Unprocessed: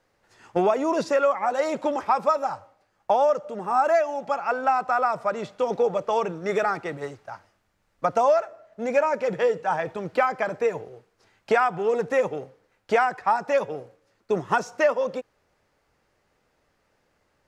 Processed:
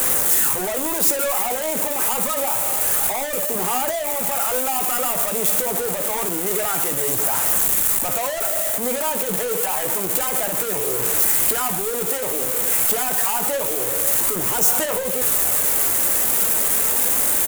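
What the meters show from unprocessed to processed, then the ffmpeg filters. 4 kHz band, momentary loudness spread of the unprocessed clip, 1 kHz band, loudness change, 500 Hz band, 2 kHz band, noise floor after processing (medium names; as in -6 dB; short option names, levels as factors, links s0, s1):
+14.0 dB, 10 LU, -2.5 dB, +6.5 dB, -2.5 dB, +2.0 dB, -24 dBFS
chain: -filter_complex "[0:a]aeval=exprs='val(0)+0.5*0.0631*sgn(val(0))':c=same,acrossover=split=180|1100|2600[s0][s1][s2][s3];[s0]acompressor=threshold=0.00708:ratio=6[s4];[s4][s1][s2][s3]amix=inputs=4:normalize=0,volume=17.8,asoftclip=hard,volume=0.0562,aphaser=in_gain=1:out_gain=1:delay=4.6:decay=0.23:speed=0.27:type=sinusoidal,aexciter=amount=7:drive=8:freq=7100,aecho=1:1:16|58:0.299|0.224,acrusher=bits=3:mode=log:mix=0:aa=0.000001"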